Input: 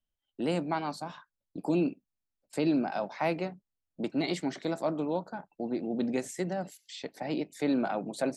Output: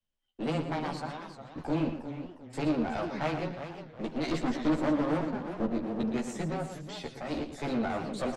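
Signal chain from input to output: 4.31–5.66 s: peaking EQ 280 Hz +12 dB 1.1 oct; frequency shift -17 Hz; one-sided clip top -41.5 dBFS, bottom -22 dBFS; distance through air 51 m; doubling 13 ms -3 dB; echo from a far wall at 20 m, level -9 dB; modulated delay 363 ms, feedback 35%, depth 220 cents, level -10 dB

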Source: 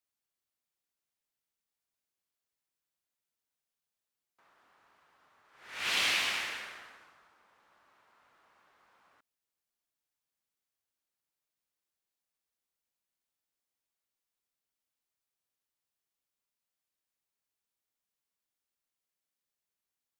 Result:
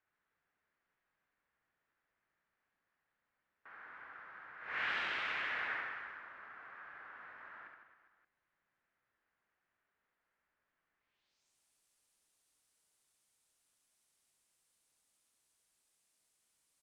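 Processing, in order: compression 5:1, threshold -45 dBFS, peak gain reduction 17 dB; low-pass sweep 1.4 kHz -> 7.8 kHz, 13.16–13.87 s; wide varispeed 1.2×; reverse bouncing-ball echo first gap 70 ms, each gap 1.25×, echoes 5; trim +7.5 dB

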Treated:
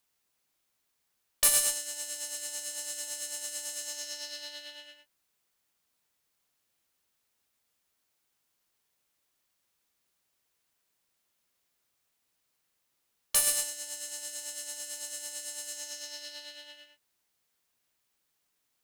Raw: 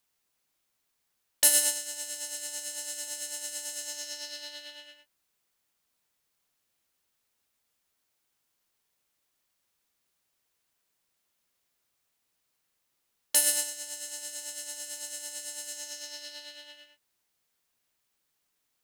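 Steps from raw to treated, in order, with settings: single-diode clipper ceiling -17 dBFS

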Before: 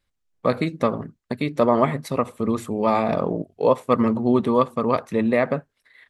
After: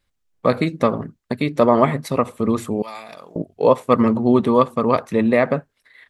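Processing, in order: 2.82–3.36 s: pre-emphasis filter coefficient 0.97; trim +3.5 dB

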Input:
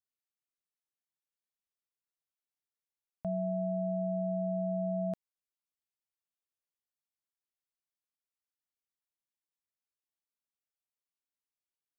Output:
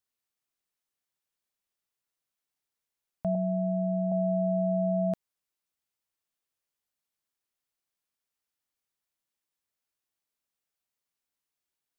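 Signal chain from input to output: 3.35–4.12 s: Bessel low-pass 630 Hz; trim +6 dB

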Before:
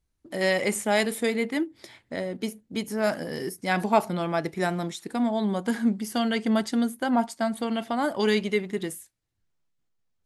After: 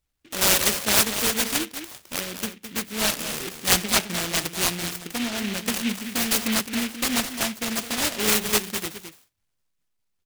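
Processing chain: 6.61–7.29 s: dead-time distortion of 0.17 ms; high-order bell 2.1 kHz +13.5 dB; delay 212 ms -9.5 dB; delay time shaken by noise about 2.4 kHz, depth 0.29 ms; trim -3.5 dB

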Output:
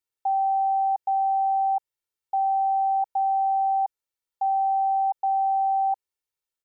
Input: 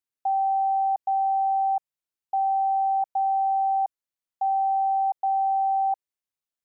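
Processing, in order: comb 2.2 ms

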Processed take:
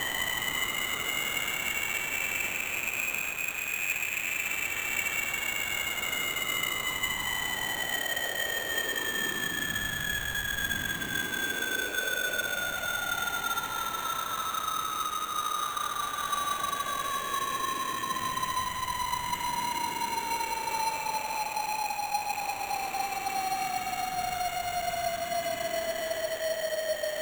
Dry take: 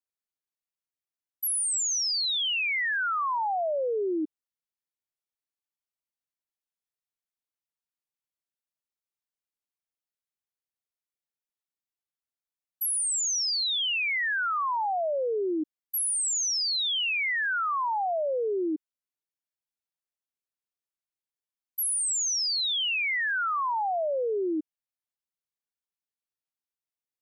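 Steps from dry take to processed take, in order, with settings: Schmitt trigger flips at -40.5 dBFS; Paulstretch 22×, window 0.10 s, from 2.47 s; sample-rate reducer 5 kHz, jitter 0%

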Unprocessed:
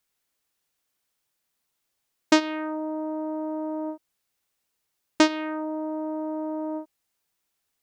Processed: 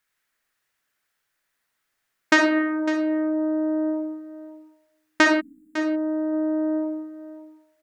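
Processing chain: peaking EQ 1.7 kHz +12 dB 0.96 oct; algorithmic reverb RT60 0.94 s, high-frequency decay 0.3×, pre-delay 15 ms, DRR 2.5 dB; spectral selection erased 5.40–5.78 s, 280–6900 Hz; on a send: delay 553 ms -14 dB; on the sum: trim -2 dB

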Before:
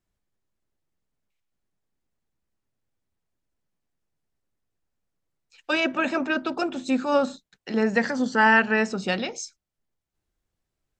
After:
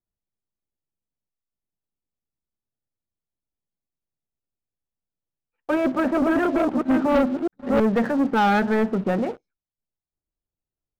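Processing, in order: 5.80–7.80 s: chunks repeated in reverse 419 ms, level -1.5 dB; Bessel low-pass 970 Hz, order 4; waveshaping leveller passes 3; warped record 33 1/3 rpm, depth 160 cents; trim -4 dB

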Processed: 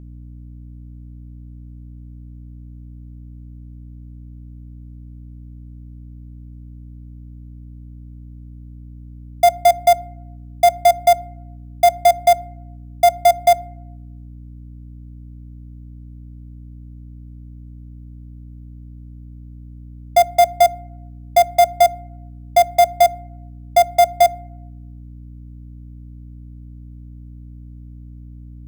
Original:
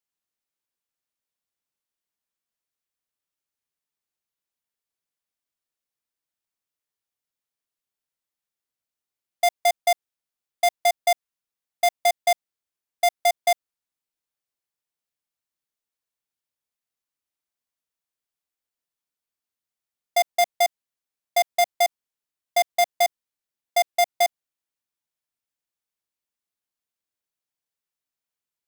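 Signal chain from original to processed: treble shelf 8.9 kHz +4.5 dB; in parallel at +1.5 dB: compression, threshold -25 dBFS, peak gain reduction 8 dB; on the sum: small resonant body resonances 680/1400/2300 Hz, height 11 dB, ringing for 40 ms; hum 60 Hz, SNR 16 dB; reverberation RT60 0.90 s, pre-delay 4 ms, DRR 19 dB; trim -4 dB

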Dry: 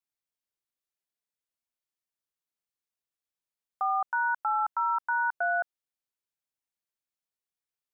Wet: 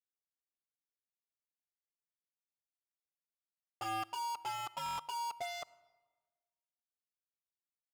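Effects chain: steep low-pass 1.3 kHz 96 dB/octave; bass shelf 470 Hz +5.5 dB; peak limiter -25 dBFS, peak gain reduction 5 dB; waveshaping leveller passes 5; in parallel at -2 dB: level held to a coarse grid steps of 22 dB; on the sum: touch-sensitive flanger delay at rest 11.7 ms, full sweep at -8.5 dBFS; wavefolder -26 dBFS; on a send at -19.5 dB: reverberation RT60 1.3 s, pre-delay 40 ms; on the sum: buffer glitch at 4.84 s, samples 1024, times 5; trim -8 dB

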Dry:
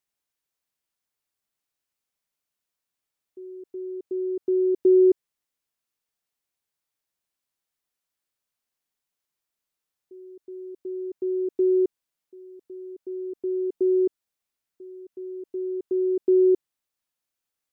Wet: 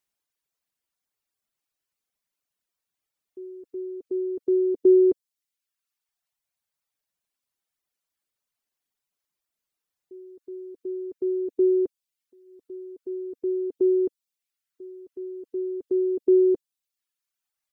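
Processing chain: reverb removal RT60 1.3 s; trim +2 dB

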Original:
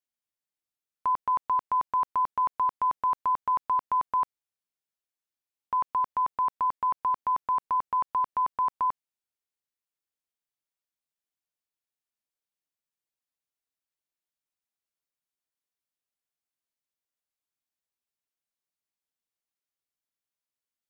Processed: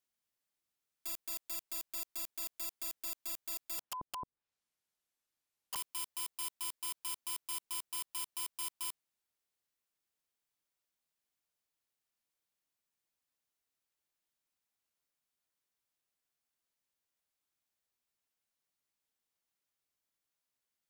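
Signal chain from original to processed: 3.78–5.76 s: low-pass that closes with the level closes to 310 Hz, closed at -25 dBFS; integer overflow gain 36.5 dB; trim +3 dB

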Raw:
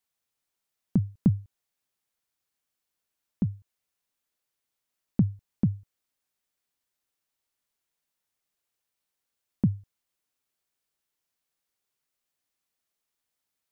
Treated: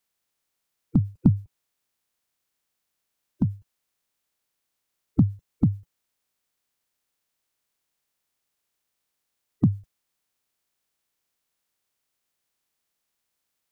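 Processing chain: coarse spectral quantiser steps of 30 dB; trim +4.5 dB

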